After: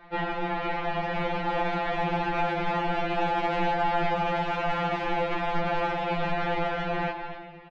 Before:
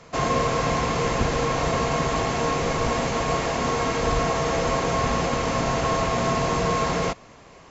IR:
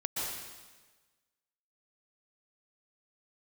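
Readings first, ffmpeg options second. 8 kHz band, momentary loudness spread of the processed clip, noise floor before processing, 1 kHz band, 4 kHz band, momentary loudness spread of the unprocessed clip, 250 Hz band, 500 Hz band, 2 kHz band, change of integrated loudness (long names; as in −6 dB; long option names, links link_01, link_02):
can't be measured, 4 LU, −48 dBFS, −2.5 dB, −7.0 dB, 1 LU, −5.5 dB, −5.5 dB, −2.0 dB, −4.5 dB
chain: -filter_complex "[0:a]dynaudnorm=framelen=380:gausssize=9:maxgain=11.5dB,aeval=exprs='0.841*(cos(1*acos(clip(val(0)/0.841,-1,1)))-cos(1*PI/2))+0.15*(cos(6*acos(clip(val(0)/0.841,-1,1)))-cos(6*PI/2))':channel_layout=same,highpass=frequency=120:width=0.5412,highpass=frequency=120:width=1.3066,alimiter=limit=-7.5dB:level=0:latency=1:release=485,aecho=1:1:242:0.133,highpass=frequency=170:width_type=q:width=0.5412,highpass=frequency=170:width_type=q:width=1.307,lowpass=frequency=3600:width_type=q:width=0.5176,lowpass=frequency=3600:width_type=q:width=0.7071,lowpass=frequency=3600:width_type=q:width=1.932,afreqshift=-240,asplit=2[link_01][link_02];[1:a]atrim=start_sample=2205[link_03];[link_02][link_03]afir=irnorm=-1:irlink=0,volume=-14.5dB[link_04];[link_01][link_04]amix=inputs=2:normalize=0,asoftclip=type=tanh:threshold=-12.5dB,equalizer=frequency=630:width_type=o:width=0.72:gain=5,acompressor=threshold=-22dB:ratio=4,afftfilt=real='re*2.83*eq(mod(b,8),0)':imag='im*2.83*eq(mod(b,8),0)':win_size=2048:overlap=0.75"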